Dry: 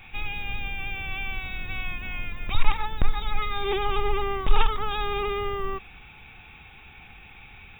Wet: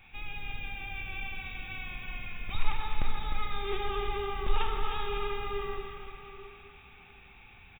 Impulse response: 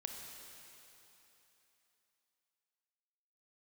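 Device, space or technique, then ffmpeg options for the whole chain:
cave: -filter_complex "[0:a]aecho=1:1:304:0.376[link_01];[1:a]atrim=start_sample=2205[link_02];[link_01][link_02]afir=irnorm=-1:irlink=0,volume=-5.5dB"

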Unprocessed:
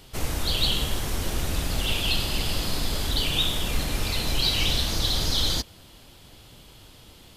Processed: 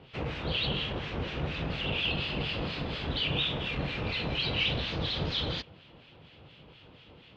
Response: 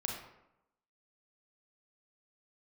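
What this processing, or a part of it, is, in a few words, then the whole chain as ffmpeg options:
guitar amplifier with harmonic tremolo: -filter_complex "[0:a]asettb=1/sr,asplit=3[link_01][link_02][link_03];[link_01]atrim=end=0.674[link_04];[link_02]atrim=start=0.67:end=1.7,asetpts=PTS-STARTPTS,afade=type=in:duration=0.004:curve=qsin,afade=type=out:start_time=1.026:duration=0.004:curve=qsin,lowpass=frequency=8000:width=0.5412,lowpass=frequency=8000:width=1.3066[link_05];[link_03]atrim=start=1.696[link_06];[link_04][link_05]acrossfade=duration=0.004:curve1=hsin:curve2=qsin[link_07];[link_07][link_06]acrossfade=duration=0.004:curve1=qsin:curve2=hsin,acrossover=split=1400[link_08][link_09];[link_08]aeval=exprs='val(0)*(1-0.7/2+0.7/2*cos(2*PI*4.2*n/s))':channel_layout=same[link_10];[link_09]aeval=exprs='val(0)*(1-0.7/2-0.7/2*cos(2*PI*4.2*n/s))':channel_layout=same[link_11];[link_10][link_11]amix=inputs=2:normalize=0,asoftclip=type=tanh:threshold=-16dB,highpass=78,equalizer=frequency=150:width_type=q:width=4:gain=6,equalizer=frequency=490:width_type=q:width=4:gain=5,equalizer=frequency=2600:width_type=q:width=4:gain=5,lowpass=frequency=3400:width=0.5412,lowpass=frequency=3400:width=1.3066"

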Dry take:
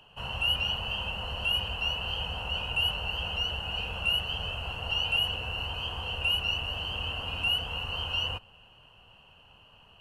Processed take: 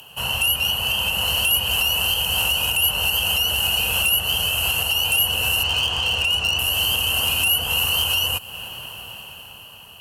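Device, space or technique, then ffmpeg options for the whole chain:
FM broadcast chain: -filter_complex "[0:a]asettb=1/sr,asplit=3[link_01][link_02][link_03];[link_01]atrim=end=5.634[link_04];[link_02]atrim=start=5.63:end=6.59,asetpts=PTS-STARTPTS,afade=type=in:duration=0.004:curve=qsin,afade=type=out:start_time=0.956:duration=0.004:curve=qsin,lowpass=frequency=6400:width=0.5412,lowpass=frequency=6400:width=1.3066[link_05];[link_03]atrim=start=6.586[link_06];[link_04][link_05]acrossfade=duration=0.004:curve1=hsin:curve2=qsin[link_07];[link_07][link_06]acrossfade=duration=0.004:curve1=qsin:curve2=hsin,highpass=63,dynaudnorm=framelen=250:gausssize=11:maxgain=11.5dB,acrossover=split=1600|6500[link_08][link_09][link_10];[link_08]acompressor=threshold=-35dB:ratio=4[link_11];[link_09]acompressor=threshold=-31dB:ratio=4[link_12];[link_10]acompressor=threshold=-49dB:ratio=4[link_13];[link_11][link_12][link_13]amix=inputs=3:normalize=0,aemphasis=mode=production:type=50fm,alimiter=limit=-22.5dB:level=0:latency=1:release=368,asoftclip=type=hard:threshold=-26dB,lowpass=frequency=15000:width=0.5412,lowpass=frequency=15000:width=1.3066,aemphasis=mode=production:type=50fm,volume=9dB"

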